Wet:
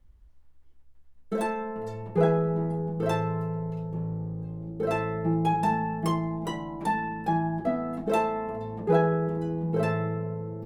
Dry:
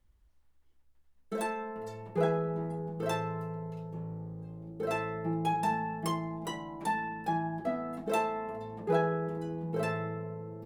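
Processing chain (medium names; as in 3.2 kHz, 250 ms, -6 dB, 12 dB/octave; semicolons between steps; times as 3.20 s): tilt EQ -1.5 dB/octave; trim +4 dB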